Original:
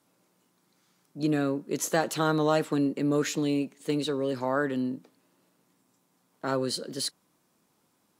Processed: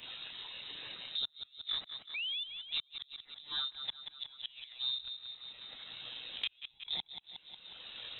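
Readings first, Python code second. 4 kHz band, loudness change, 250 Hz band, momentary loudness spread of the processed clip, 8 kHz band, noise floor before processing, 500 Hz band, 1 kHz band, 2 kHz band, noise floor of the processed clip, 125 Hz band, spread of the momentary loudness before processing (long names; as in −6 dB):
+3.5 dB, −11.0 dB, below −35 dB, 11 LU, below −40 dB, −71 dBFS, below −30 dB, −22.5 dB, −9.5 dB, −67 dBFS, below −30 dB, 7 LU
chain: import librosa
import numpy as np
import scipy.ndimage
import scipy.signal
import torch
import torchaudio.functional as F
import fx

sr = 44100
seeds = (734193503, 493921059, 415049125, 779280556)

y = np.where(x < 0.0, 10.0 ** (-3.0 / 20.0) * x, x)
y = fx.low_shelf(y, sr, hz=180.0, db=-9.5)
y = fx.rider(y, sr, range_db=3, speed_s=2.0)
y = fx.chorus_voices(y, sr, voices=6, hz=0.6, base_ms=26, depth_ms=1.0, mix_pct=65)
y = fx.gate_flip(y, sr, shuts_db=-27.0, range_db=-38)
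y = fx.leveller(y, sr, passes=1)
y = fx.spec_paint(y, sr, seeds[0], shape='fall', start_s=2.14, length_s=0.3, low_hz=330.0, high_hz=1700.0, level_db=-45.0)
y = fx.echo_feedback(y, sr, ms=181, feedback_pct=37, wet_db=-11.5)
y = fx.freq_invert(y, sr, carrier_hz=3900)
y = fx.band_squash(y, sr, depth_pct=100)
y = y * librosa.db_to_amplitude(3.5)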